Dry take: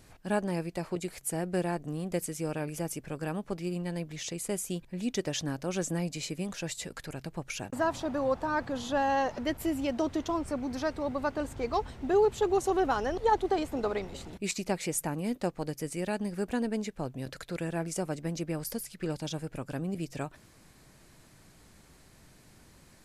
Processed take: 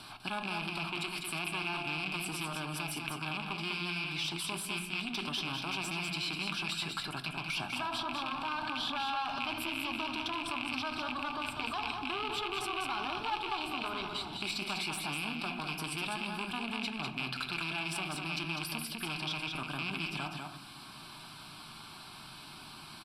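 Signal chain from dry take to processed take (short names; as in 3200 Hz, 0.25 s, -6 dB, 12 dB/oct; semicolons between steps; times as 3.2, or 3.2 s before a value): rattling part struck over -37 dBFS, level -24 dBFS; notches 60/120/180/240 Hz; on a send at -8 dB: reverb RT60 0.75 s, pre-delay 5 ms; on the sum: one-sided clip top -35.5 dBFS; low shelf 200 Hz -11 dB; fixed phaser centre 1900 Hz, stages 6; in parallel at +2.5 dB: negative-ratio compressor -45 dBFS, ratio -1; on the sum: LPF 7000 Hz 12 dB/oct; tilt +1.5 dB/oct; echo 0.199 s -5.5 dB; three-band squash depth 40%; gain -2 dB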